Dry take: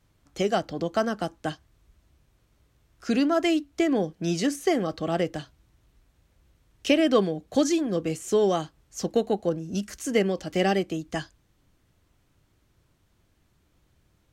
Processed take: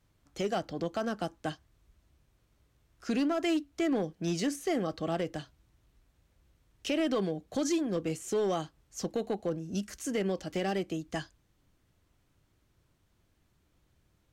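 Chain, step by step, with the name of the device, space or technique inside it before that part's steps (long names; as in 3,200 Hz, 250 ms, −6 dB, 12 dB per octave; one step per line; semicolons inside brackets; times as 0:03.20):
limiter into clipper (brickwall limiter −16.5 dBFS, peak gain reduction 7.5 dB; hard clipping −19 dBFS, distortion −23 dB)
level −4.5 dB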